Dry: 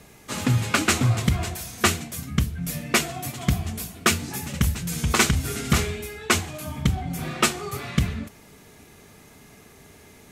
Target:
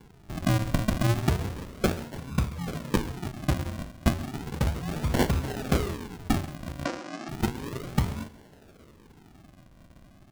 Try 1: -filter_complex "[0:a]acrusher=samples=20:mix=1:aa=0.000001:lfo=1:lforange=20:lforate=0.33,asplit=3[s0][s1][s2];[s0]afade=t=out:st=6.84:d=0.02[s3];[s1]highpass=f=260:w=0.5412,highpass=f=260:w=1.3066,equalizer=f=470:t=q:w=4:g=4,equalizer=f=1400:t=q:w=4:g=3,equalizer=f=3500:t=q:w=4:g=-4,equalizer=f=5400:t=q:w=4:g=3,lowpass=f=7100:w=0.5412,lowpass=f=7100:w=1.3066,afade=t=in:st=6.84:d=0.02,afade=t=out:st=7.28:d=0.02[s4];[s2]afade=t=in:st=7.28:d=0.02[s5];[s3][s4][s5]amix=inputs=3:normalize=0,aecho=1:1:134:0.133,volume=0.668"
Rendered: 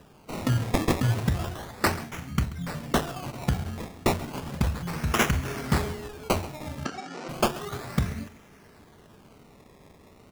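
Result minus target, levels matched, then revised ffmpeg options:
decimation with a swept rate: distortion -5 dB
-filter_complex "[0:a]acrusher=samples=69:mix=1:aa=0.000001:lfo=1:lforange=69:lforate=0.33,asplit=3[s0][s1][s2];[s0]afade=t=out:st=6.84:d=0.02[s3];[s1]highpass=f=260:w=0.5412,highpass=f=260:w=1.3066,equalizer=f=470:t=q:w=4:g=4,equalizer=f=1400:t=q:w=4:g=3,equalizer=f=3500:t=q:w=4:g=-4,equalizer=f=5400:t=q:w=4:g=3,lowpass=f=7100:w=0.5412,lowpass=f=7100:w=1.3066,afade=t=in:st=6.84:d=0.02,afade=t=out:st=7.28:d=0.02[s4];[s2]afade=t=in:st=7.28:d=0.02[s5];[s3][s4][s5]amix=inputs=3:normalize=0,aecho=1:1:134:0.133,volume=0.668"

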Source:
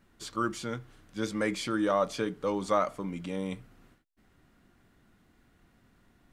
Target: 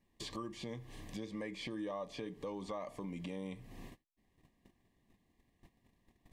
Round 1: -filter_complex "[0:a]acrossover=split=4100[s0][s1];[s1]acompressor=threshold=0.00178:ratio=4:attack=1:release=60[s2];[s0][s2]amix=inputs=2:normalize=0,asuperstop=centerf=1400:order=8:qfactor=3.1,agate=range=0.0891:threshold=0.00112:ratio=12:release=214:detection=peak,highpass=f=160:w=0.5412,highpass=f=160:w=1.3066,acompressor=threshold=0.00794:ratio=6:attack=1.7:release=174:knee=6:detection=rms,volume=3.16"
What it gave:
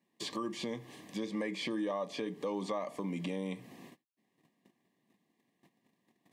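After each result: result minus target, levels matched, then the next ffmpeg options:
compression: peak gain reduction -6 dB; 125 Hz band -3.0 dB
-filter_complex "[0:a]acrossover=split=4100[s0][s1];[s1]acompressor=threshold=0.00178:ratio=4:attack=1:release=60[s2];[s0][s2]amix=inputs=2:normalize=0,asuperstop=centerf=1400:order=8:qfactor=3.1,agate=range=0.0891:threshold=0.00112:ratio=12:release=214:detection=peak,highpass=f=160:w=0.5412,highpass=f=160:w=1.3066,acompressor=threshold=0.00355:ratio=6:attack=1.7:release=174:knee=6:detection=rms,volume=3.16"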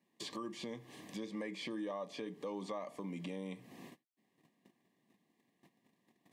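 125 Hz band -3.0 dB
-filter_complex "[0:a]acrossover=split=4100[s0][s1];[s1]acompressor=threshold=0.00178:ratio=4:attack=1:release=60[s2];[s0][s2]amix=inputs=2:normalize=0,asuperstop=centerf=1400:order=8:qfactor=3.1,agate=range=0.0891:threshold=0.00112:ratio=12:release=214:detection=peak,acompressor=threshold=0.00355:ratio=6:attack=1.7:release=174:knee=6:detection=rms,volume=3.16"

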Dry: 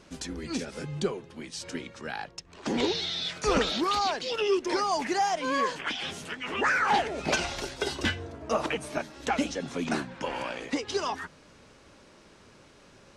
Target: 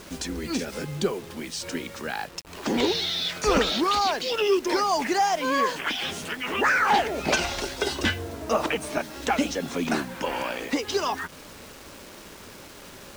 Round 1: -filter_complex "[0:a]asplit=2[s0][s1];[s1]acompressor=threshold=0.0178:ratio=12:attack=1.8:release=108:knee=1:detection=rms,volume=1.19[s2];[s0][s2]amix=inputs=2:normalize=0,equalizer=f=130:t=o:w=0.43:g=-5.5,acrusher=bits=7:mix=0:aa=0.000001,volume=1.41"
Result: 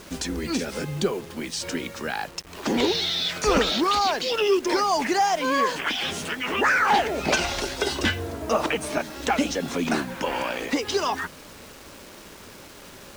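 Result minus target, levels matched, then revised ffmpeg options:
compression: peak gain reduction -8.5 dB
-filter_complex "[0:a]asplit=2[s0][s1];[s1]acompressor=threshold=0.00631:ratio=12:attack=1.8:release=108:knee=1:detection=rms,volume=1.19[s2];[s0][s2]amix=inputs=2:normalize=0,equalizer=f=130:t=o:w=0.43:g=-5.5,acrusher=bits=7:mix=0:aa=0.000001,volume=1.41"

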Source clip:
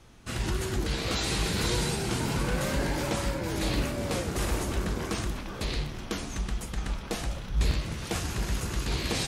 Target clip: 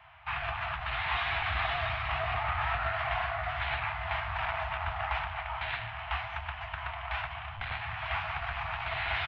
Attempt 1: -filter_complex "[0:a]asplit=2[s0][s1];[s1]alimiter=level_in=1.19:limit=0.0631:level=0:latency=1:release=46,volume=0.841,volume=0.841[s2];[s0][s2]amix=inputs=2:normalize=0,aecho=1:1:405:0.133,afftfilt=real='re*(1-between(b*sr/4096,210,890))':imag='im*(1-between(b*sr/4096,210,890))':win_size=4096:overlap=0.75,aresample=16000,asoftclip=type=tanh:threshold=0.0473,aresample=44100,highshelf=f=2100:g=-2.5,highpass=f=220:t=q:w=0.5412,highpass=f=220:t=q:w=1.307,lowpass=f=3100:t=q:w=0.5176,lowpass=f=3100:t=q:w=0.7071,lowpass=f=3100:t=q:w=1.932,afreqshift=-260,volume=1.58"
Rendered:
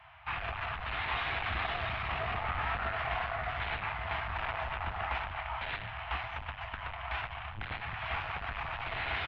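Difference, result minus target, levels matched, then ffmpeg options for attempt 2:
saturation: distortion +11 dB
-filter_complex "[0:a]asplit=2[s0][s1];[s1]alimiter=level_in=1.19:limit=0.0631:level=0:latency=1:release=46,volume=0.841,volume=0.841[s2];[s0][s2]amix=inputs=2:normalize=0,aecho=1:1:405:0.133,afftfilt=real='re*(1-between(b*sr/4096,210,890))':imag='im*(1-between(b*sr/4096,210,890))':win_size=4096:overlap=0.75,aresample=16000,asoftclip=type=tanh:threshold=0.133,aresample=44100,highshelf=f=2100:g=-2.5,highpass=f=220:t=q:w=0.5412,highpass=f=220:t=q:w=1.307,lowpass=f=3100:t=q:w=0.5176,lowpass=f=3100:t=q:w=0.7071,lowpass=f=3100:t=q:w=1.932,afreqshift=-260,volume=1.58"

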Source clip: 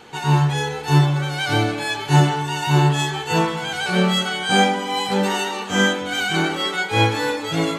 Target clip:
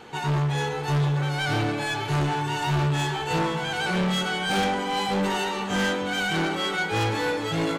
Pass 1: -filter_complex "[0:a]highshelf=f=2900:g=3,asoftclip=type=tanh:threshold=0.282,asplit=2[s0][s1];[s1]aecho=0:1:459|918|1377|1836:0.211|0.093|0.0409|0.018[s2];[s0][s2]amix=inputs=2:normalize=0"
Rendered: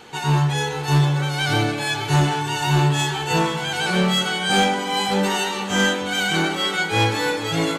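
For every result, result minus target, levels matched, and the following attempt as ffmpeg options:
saturation: distortion -9 dB; 8 kHz band +3.5 dB
-filter_complex "[0:a]highshelf=f=2900:g=3,asoftclip=type=tanh:threshold=0.0891,asplit=2[s0][s1];[s1]aecho=0:1:459|918|1377|1836:0.211|0.093|0.0409|0.018[s2];[s0][s2]amix=inputs=2:normalize=0"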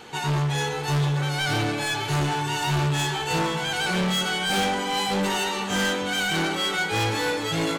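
8 kHz band +5.0 dB
-filter_complex "[0:a]highshelf=f=2900:g=-5,asoftclip=type=tanh:threshold=0.0891,asplit=2[s0][s1];[s1]aecho=0:1:459|918|1377|1836:0.211|0.093|0.0409|0.018[s2];[s0][s2]amix=inputs=2:normalize=0"

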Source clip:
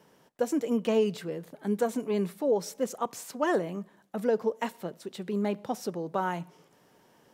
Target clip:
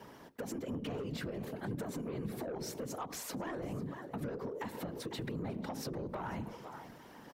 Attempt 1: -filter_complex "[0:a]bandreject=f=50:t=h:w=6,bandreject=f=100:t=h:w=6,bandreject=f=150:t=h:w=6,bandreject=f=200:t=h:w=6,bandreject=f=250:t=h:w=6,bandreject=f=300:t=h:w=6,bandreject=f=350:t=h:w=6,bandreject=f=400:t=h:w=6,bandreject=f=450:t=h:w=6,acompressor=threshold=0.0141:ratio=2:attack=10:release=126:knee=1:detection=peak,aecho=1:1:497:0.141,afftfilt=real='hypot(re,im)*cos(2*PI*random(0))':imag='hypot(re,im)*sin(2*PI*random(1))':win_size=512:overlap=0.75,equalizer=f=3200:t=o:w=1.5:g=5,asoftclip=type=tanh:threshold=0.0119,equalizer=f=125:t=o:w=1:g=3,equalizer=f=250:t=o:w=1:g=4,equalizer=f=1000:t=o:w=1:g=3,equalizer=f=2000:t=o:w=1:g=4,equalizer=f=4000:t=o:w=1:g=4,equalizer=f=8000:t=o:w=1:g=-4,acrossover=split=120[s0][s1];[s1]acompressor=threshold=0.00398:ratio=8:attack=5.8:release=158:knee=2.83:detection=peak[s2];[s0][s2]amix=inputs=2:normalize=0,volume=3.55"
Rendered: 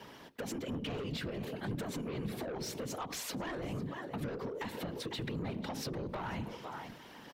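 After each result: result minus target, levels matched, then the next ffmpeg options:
compression: peak gain reduction -4 dB; 4 kHz band +4.0 dB
-filter_complex "[0:a]bandreject=f=50:t=h:w=6,bandreject=f=100:t=h:w=6,bandreject=f=150:t=h:w=6,bandreject=f=200:t=h:w=6,bandreject=f=250:t=h:w=6,bandreject=f=300:t=h:w=6,bandreject=f=350:t=h:w=6,bandreject=f=400:t=h:w=6,bandreject=f=450:t=h:w=6,acompressor=threshold=0.00531:ratio=2:attack=10:release=126:knee=1:detection=peak,aecho=1:1:497:0.141,afftfilt=real='hypot(re,im)*cos(2*PI*random(0))':imag='hypot(re,im)*sin(2*PI*random(1))':win_size=512:overlap=0.75,equalizer=f=3200:t=o:w=1.5:g=5,asoftclip=type=tanh:threshold=0.0119,equalizer=f=125:t=o:w=1:g=3,equalizer=f=250:t=o:w=1:g=4,equalizer=f=1000:t=o:w=1:g=3,equalizer=f=2000:t=o:w=1:g=4,equalizer=f=4000:t=o:w=1:g=4,equalizer=f=8000:t=o:w=1:g=-4,acrossover=split=120[s0][s1];[s1]acompressor=threshold=0.00398:ratio=8:attack=5.8:release=158:knee=2.83:detection=peak[s2];[s0][s2]amix=inputs=2:normalize=0,volume=3.55"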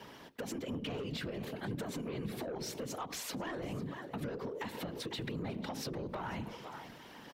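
4 kHz band +4.5 dB
-filter_complex "[0:a]bandreject=f=50:t=h:w=6,bandreject=f=100:t=h:w=6,bandreject=f=150:t=h:w=6,bandreject=f=200:t=h:w=6,bandreject=f=250:t=h:w=6,bandreject=f=300:t=h:w=6,bandreject=f=350:t=h:w=6,bandreject=f=400:t=h:w=6,bandreject=f=450:t=h:w=6,acompressor=threshold=0.00531:ratio=2:attack=10:release=126:knee=1:detection=peak,aecho=1:1:497:0.141,afftfilt=real='hypot(re,im)*cos(2*PI*random(0))':imag='hypot(re,im)*sin(2*PI*random(1))':win_size=512:overlap=0.75,equalizer=f=3200:t=o:w=1.5:g=-3.5,asoftclip=type=tanh:threshold=0.0119,equalizer=f=125:t=o:w=1:g=3,equalizer=f=250:t=o:w=1:g=4,equalizer=f=1000:t=o:w=1:g=3,equalizer=f=2000:t=o:w=1:g=4,equalizer=f=4000:t=o:w=1:g=4,equalizer=f=8000:t=o:w=1:g=-4,acrossover=split=120[s0][s1];[s1]acompressor=threshold=0.00398:ratio=8:attack=5.8:release=158:knee=2.83:detection=peak[s2];[s0][s2]amix=inputs=2:normalize=0,volume=3.55"

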